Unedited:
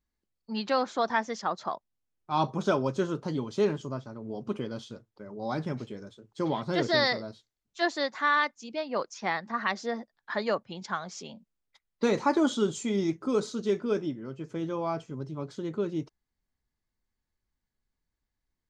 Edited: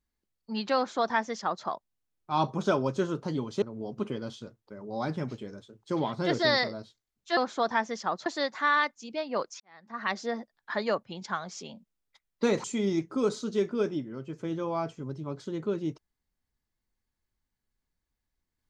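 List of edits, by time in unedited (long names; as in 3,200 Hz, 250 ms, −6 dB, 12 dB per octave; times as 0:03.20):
0:00.76–0:01.65: duplicate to 0:07.86
0:03.62–0:04.11: remove
0:09.20–0:09.72: fade in quadratic
0:12.24–0:12.75: remove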